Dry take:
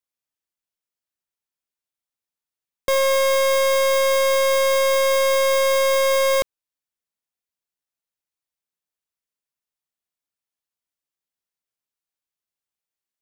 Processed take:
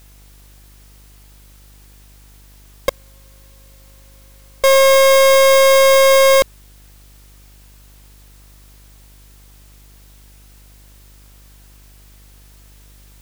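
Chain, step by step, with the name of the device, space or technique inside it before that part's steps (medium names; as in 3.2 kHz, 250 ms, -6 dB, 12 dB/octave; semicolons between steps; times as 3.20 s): 2.89–4.64 s: gate -7 dBFS, range -50 dB; video cassette with head-switching buzz (mains buzz 50 Hz, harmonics 40, -54 dBFS -9 dB/octave; white noise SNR 33 dB); trim +8 dB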